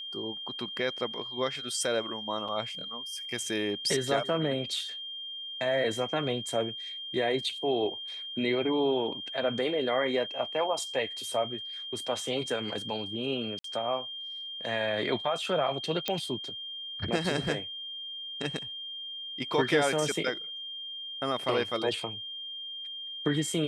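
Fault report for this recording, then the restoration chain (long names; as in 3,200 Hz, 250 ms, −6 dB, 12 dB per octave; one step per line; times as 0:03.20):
whistle 3,200 Hz −37 dBFS
0:02.48–0:02.49: drop-out 5.5 ms
0:13.59–0:13.64: drop-out 53 ms
0:16.08: click −13 dBFS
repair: click removal
notch filter 3,200 Hz, Q 30
repair the gap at 0:02.48, 5.5 ms
repair the gap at 0:13.59, 53 ms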